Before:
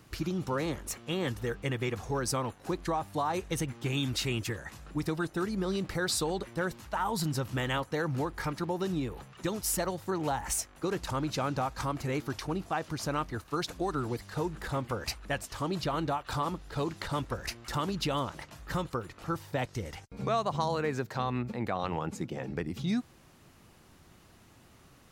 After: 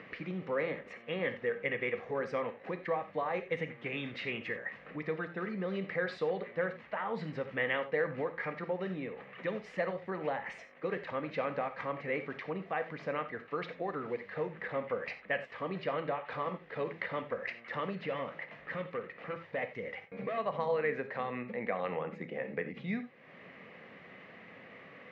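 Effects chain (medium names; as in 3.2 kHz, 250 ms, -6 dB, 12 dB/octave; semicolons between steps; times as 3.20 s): tilt EQ +2.5 dB/octave; upward compressor, threshold -36 dBFS; 17.96–20.38 s: hard clipper -31.5 dBFS, distortion -18 dB; cabinet simulation 190–2200 Hz, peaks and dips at 190 Hz +4 dB, 330 Hz -9 dB, 480 Hz +8 dB, 900 Hz -9 dB, 1.4 kHz -9 dB, 2 kHz +7 dB; gated-style reverb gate 110 ms flat, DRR 8.5 dB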